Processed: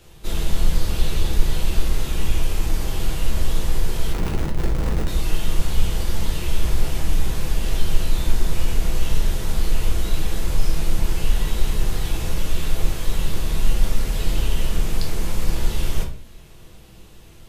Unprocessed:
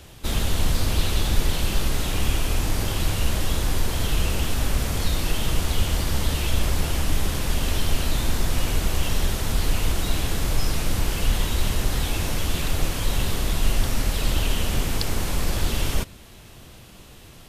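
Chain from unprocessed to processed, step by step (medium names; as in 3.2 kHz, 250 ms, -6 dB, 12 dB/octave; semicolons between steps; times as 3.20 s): 4.12–5.08 s: Schmitt trigger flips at -25.5 dBFS; simulated room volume 36 m³, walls mixed, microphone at 0.64 m; trim -6.5 dB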